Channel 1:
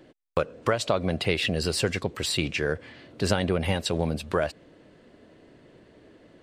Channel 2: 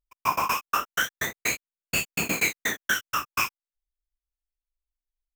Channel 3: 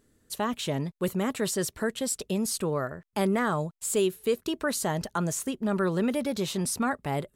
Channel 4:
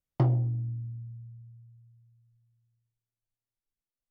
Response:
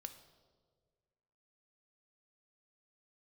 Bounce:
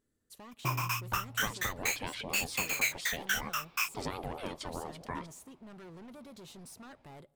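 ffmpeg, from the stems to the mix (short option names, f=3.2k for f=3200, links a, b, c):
-filter_complex "[0:a]aeval=exprs='val(0)*sin(2*PI*500*n/s+500*0.35/4.4*sin(2*PI*4.4*n/s))':c=same,adelay=750,volume=-13dB,asplit=2[a][b];[b]volume=-8dB[c];[1:a]highpass=1.4k,adelay=400,volume=-5.5dB,asplit=2[d][e];[e]volume=-17.5dB[f];[2:a]volume=30dB,asoftclip=hard,volume=-30dB,acompressor=threshold=-33dB:ratio=6,volume=-16.5dB,asplit=2[g][h];[h]volume=-9.5dB[i];[3:a]adelay=450,volume=-12dB[j];[4:a]atrim=start_sample=2205[k];[c][f][i]amix=inputs=3:normalize=0[l];[l][k]afir=irnorm=-1:irlink=0[m];[a][d][g][j][m]amix=inputs=5:normalize=0"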